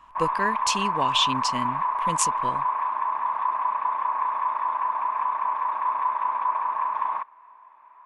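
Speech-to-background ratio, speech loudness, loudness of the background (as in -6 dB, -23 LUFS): -1.5 dB, -27.0 LUFS, -25.5 LUFS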